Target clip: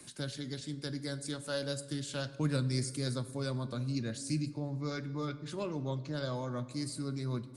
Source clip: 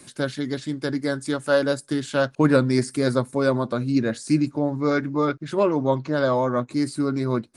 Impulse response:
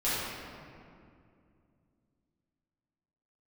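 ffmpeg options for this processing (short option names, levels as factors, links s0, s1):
-filter_complex "[0:a]acrossover=split=160|3000[s0][s1][s2];[s1]acompressor=threshold=0.00112:ratio=1.5[s3];[s0][s3][s2]amix=inputs=3:normalize=0,asplit=2[s4][s5];[1:a]atrim=start_sample=2205,asetrate=83790,aresample=44100[s6];[s5][s6]afir=irnorm=-1:irlink=0,volume=0.133[s7];[s4][s7]amix=inputs=2:normalize=0,volume=0.562"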